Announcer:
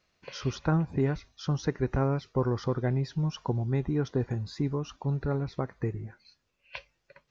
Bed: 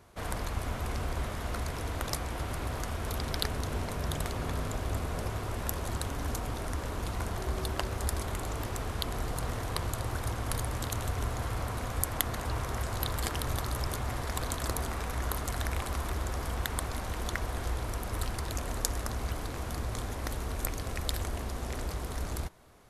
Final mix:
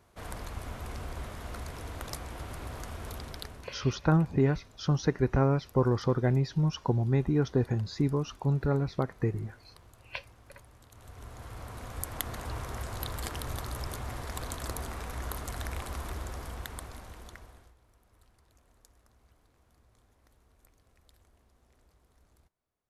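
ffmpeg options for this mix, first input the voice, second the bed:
-filter_complex "[0:a]adelay=3400,volume=1.26[s0];[1:a]volume=4.73,afade=t=out:st=3.05:d=0.75:silence=0.133352,afade=t=in:st=10.9:d=1.45:silence=0.112202,afade=t=out:st=16.1:d=1.64:silence=0.0473151[s1];[s0][s1]amix=inputs=2:normalize=0"

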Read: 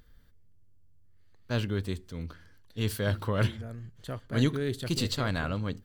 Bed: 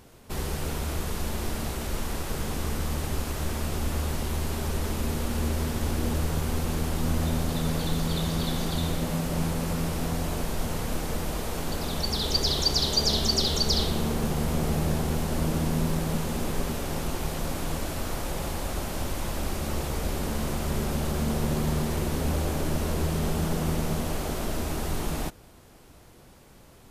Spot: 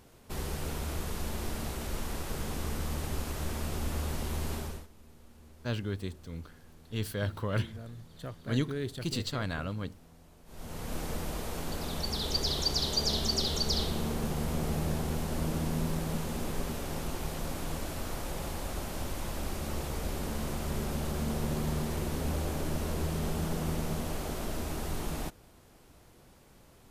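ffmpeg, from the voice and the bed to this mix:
-filter_complex "[0:a]adelay=4150,volume=0.631[s0];[1:a]volume=7.5,afade=t=out:st=4.54:d=0.33:silence=0.0707946,afade=t=in:st=10.45:d=0.56:silence=0.0749894[s1];[s0][s1]amix=inputs=2:normalize=0"

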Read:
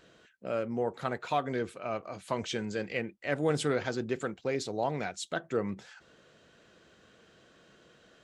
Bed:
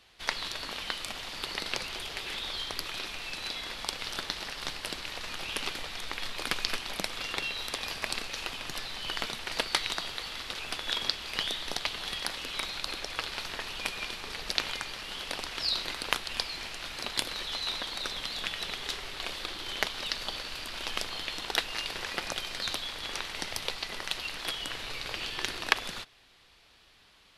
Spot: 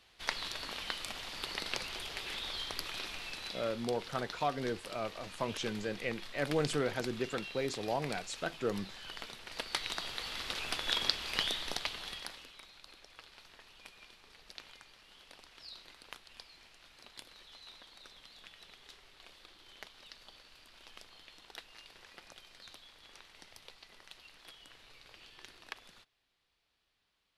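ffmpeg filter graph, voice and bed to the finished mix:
-filter_complex "[0:a]adelay=3100,volume=0.668[s0];[1:a]volume=2.11,afade=t=out:st=3.15:d=0.73:silence=0.421697,afade=t=in:st=9.5:d=0.98:silence=0.298538,afade=t=out:st=11.39:d=1.17:silence=0.112202[s1];[s0][s1]amix=inputs=2:normalize=0"

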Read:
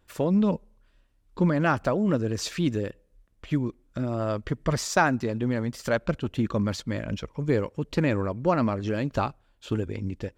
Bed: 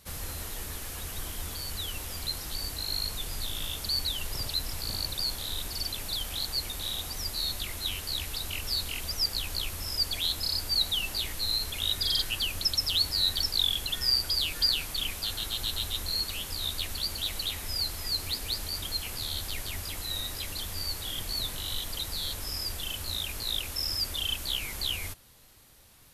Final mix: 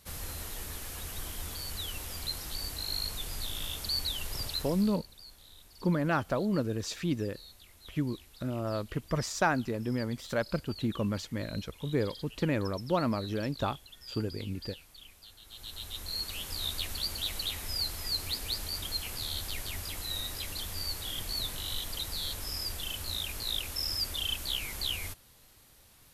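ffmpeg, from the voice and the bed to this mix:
-filter_complex "[0:a]adelay=4450,volume=0.531[s0];[1:a]volume=6.31,afade=t=out:st=4.45:d=0.57:silence=0.125893,afade=t=in:st=15.43:d=1.15:silence=0.11885[s1];[s0][s1]amix=inputs=2:normalize=0"

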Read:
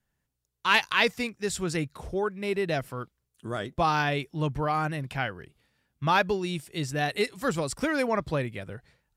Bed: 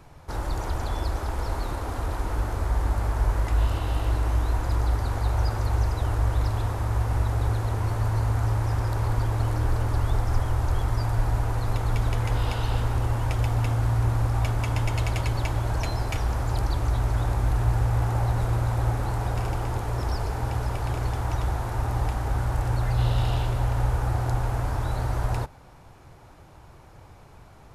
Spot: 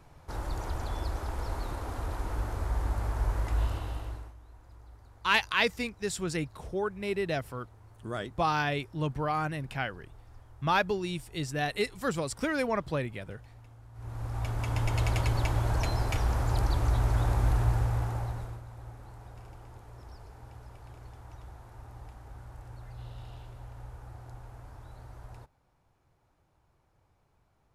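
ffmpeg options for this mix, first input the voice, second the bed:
-filter_complex "[0:a]adelay=4600,volume=0.708[s0];[1:a]volume=10.6,afade=t=out:st=3.63:d=0.71:silence=0.0749894,afade=t=in:st=13.93:d=1.16:silence=0.0473151,afade=t=out:st=17.5:d=1.12:silence=0.112202[s1];[s0][s1]amix=inputs=2:normalize=0"

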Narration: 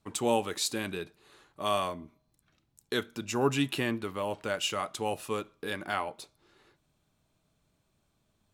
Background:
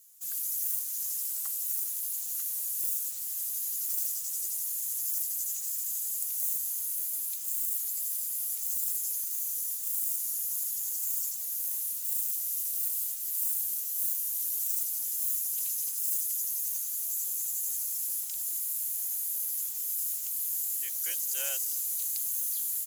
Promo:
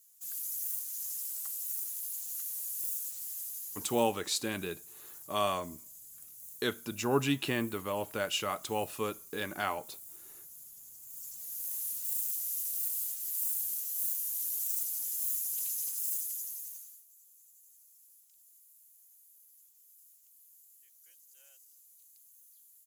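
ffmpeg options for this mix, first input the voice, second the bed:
-filter_complex "[0:a]adelay=3700,volume=0.841[s0];[1:a]volume=3.35,afade=t=out:st=3.25:d=0.86:silence=0.211349,afade=t=in:st=11.07:d=0.81:silence=0.16788,afade=t=out:st=15.98:d=1.06:silence=0.0562341[s1];[s0][s1]amix=inputs=2:normalize=0"

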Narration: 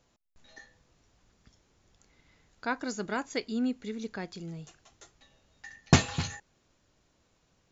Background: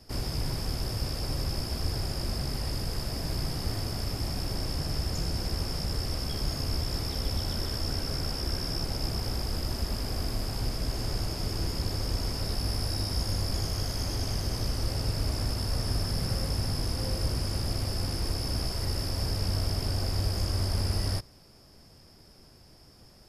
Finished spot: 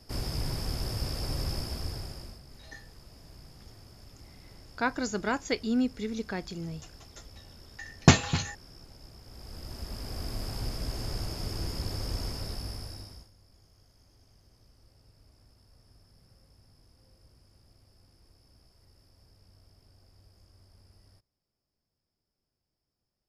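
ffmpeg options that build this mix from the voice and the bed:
-filter_complex "[0:a]adelay=2150,volume=1.41[s0];[1:a]volume=5.62,afade=t=out:st=1.51:d=0.9:silence=0.11885,afade=t=in:st=9.25:d=1.22:silence=0.149624,afade=t=out:st=12.23:d=1.07:silence=0.0421697[s1];[s0][s1]amix=inputs=2:normalize=0"

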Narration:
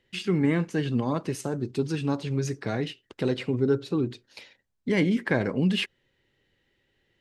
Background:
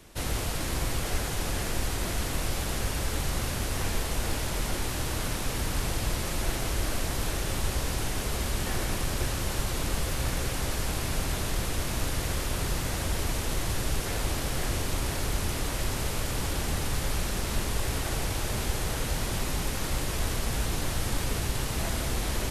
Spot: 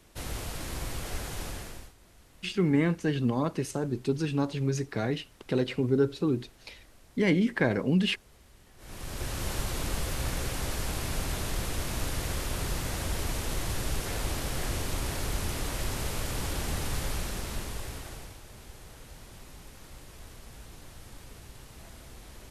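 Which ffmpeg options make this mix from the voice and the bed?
-filter_complex "[0:a]adelay=2300,volume=0.891[s0];[1:a]volume=8.91,afade=t=out:st=1.42:d=0.51:silence=0.0841395,afade=t=in:st=8.77:d=0.69:silence=0.0562341,afade=t=out:st=16.98:d=1.42:silence=0.158489[s1];[s0][s1]amix=inputs=2:normalize=0"

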